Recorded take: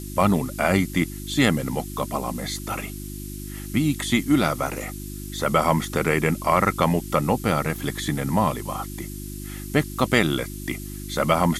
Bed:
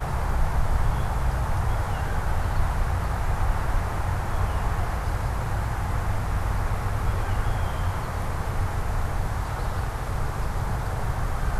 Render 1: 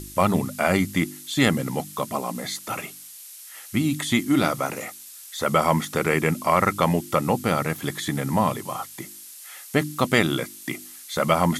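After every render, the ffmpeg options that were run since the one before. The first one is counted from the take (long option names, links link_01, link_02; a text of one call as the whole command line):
ffmpeg -i in.wav -af "bandreject=frequency=50:width_type=h:width=4,bandreject=frequency=100:width_type=h:width=4,bandreject=frequency=150:width_type=h:width=4,bandreject=frequency=200:width_type=h:width=4,bandreject=frequency=250:width_type=h:width=4,bandreject=frequency=300:width_type=h:width=4,bandreject=frequency=350:width_type=h:width=4" out.wav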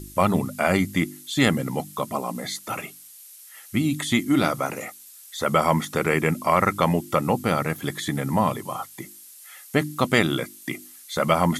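ffmpeg -i in.wav -af "afftdn=noise_reduction=6:noise_floor=-43" out.wav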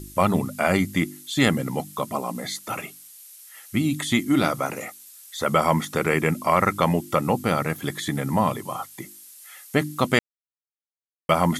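ffmpeg -i in.wav -filter_complex "[0:a]asplit=3[link_01][link_02][link_03];[link_01]atrim=end=10.19,asetpts=PTS-STARTPTS,afade=type=out:start_time=10.186:duration=0.004:curve=hsin[link_04];[link_02]atrim=start=10.19:end=11.29,asetpts=PTS-STARTPTS,volume=0[link_05];[link_03]atrim=start=11.29,asetpts=PTS-STARTPTS,afade=type=in:duration=0.004:curve=hsin[link_06];[link_04][link_05][link_06]concat=n=3:v=0:a=1" out.wav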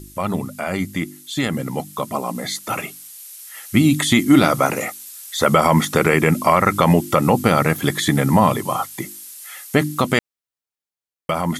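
ffmpeg -i in.wav -af "alimiter=limit=-11.5dB:level=0:latency=1:release=62,dynaudnorm=framelen=770:gausssize=7:maxgain=11.5dB" out.wav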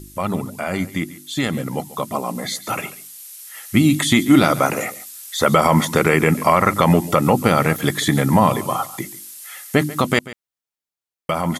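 ffmpeg -i in.wav -af "aecho=1:1:140:0.141" out.wav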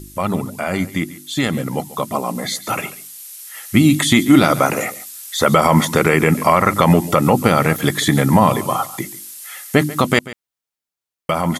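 ffmpeg -i in.wav -af "volume=2.5dB,alimiter=limit=-1dB:level=0:latency=1" out.wav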